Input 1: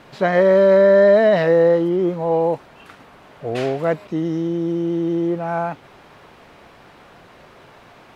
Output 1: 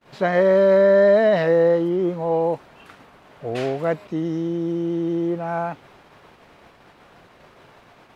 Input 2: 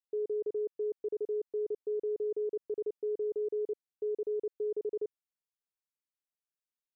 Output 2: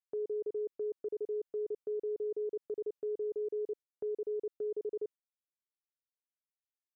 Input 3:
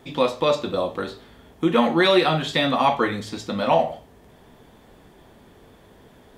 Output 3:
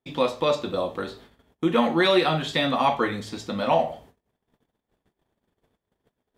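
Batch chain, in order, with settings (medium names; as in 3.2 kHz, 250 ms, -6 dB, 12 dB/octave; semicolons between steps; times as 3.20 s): gate -46 dBFS, range -32 dB; trim -2.5 dB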